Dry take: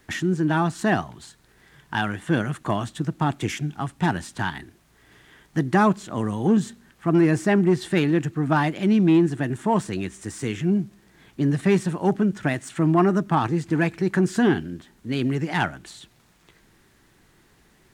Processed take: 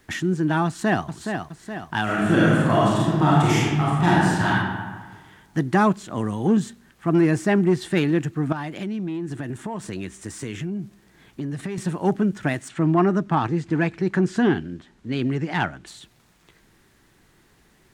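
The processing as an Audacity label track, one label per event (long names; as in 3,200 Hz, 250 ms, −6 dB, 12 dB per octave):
0.660000	1.060000	delay throw 420 ms, feedback 55%, level −6.5 dB
2.030000	4.490000	thrown reverb, RT60 1.5 s, DRR −7 dB
8.520000	11.780000	downward compressor 10 to 1, threshold −25 dBFS
12.680000	15.870000	high-frequency loss of the air 62 metres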